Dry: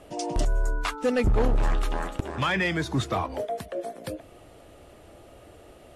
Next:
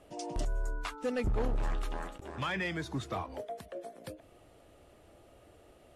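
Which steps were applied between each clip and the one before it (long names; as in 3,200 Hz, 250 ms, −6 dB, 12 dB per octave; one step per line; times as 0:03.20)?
every ending faded ahead of time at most 190 dB per second
level −9 dB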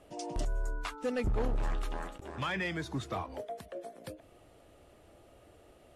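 no processing that can be heard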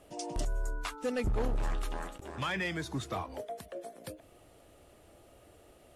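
high-shelf EQ 6,100 Hz +7 dB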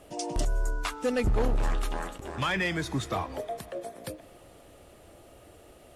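convolution reverb RT60 4.4 s, pre-delay 53 ms, DRR 19.5 dB
level +5.5 dB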